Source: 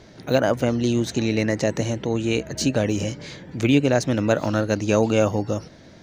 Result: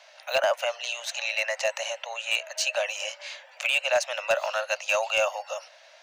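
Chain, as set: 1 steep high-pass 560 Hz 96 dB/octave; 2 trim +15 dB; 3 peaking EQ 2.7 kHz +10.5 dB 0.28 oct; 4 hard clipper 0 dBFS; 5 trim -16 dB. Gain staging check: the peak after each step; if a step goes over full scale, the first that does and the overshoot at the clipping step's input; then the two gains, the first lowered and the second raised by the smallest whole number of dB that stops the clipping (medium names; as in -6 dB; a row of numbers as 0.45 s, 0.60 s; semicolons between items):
-9.5 dBFS, +5.5 dBFS, +8.0 dBFS, 0.0 dBFS, -16.0 dBFS; step 2, 8.0 dB; step 2 +7 dB, step 5 -8 dB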